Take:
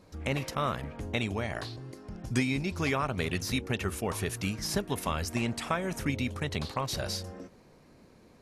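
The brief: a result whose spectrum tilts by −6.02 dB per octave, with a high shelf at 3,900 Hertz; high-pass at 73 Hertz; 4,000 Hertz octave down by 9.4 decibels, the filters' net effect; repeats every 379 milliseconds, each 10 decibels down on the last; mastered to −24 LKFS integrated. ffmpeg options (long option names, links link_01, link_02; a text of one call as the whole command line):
ffmpeg -i in.wav -af "highpass=73,highshelf=frequency=3900:gain=-6,equalizer=frequency=4000:width_type=o:gain=-8.5,aecho=1:1:379|758|1137|1516:0.316|0.101|0.0324|0.0104,volume=9.5dB" out.wav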